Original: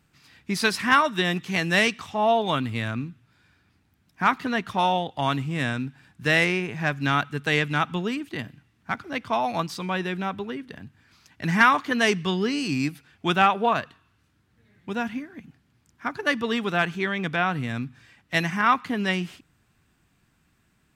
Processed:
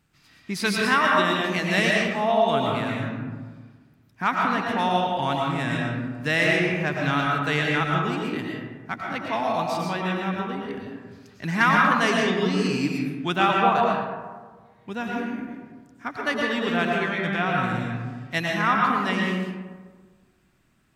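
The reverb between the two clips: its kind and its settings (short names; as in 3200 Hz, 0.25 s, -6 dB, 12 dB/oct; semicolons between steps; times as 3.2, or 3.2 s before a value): digital reverb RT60 1.5 s, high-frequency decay 0.4×, pre-delay 75 ms, DRR -2 dB; gain -3 dB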